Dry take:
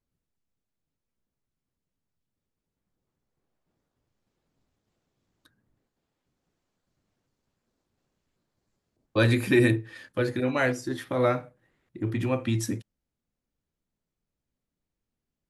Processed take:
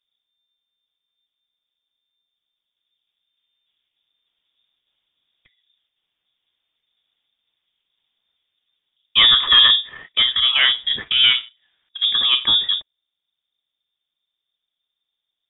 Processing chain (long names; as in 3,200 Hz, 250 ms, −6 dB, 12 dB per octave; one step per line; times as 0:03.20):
leveller curve on the samples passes 1
voice inversion scrambler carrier 3,600 Hz
level +5.5 dB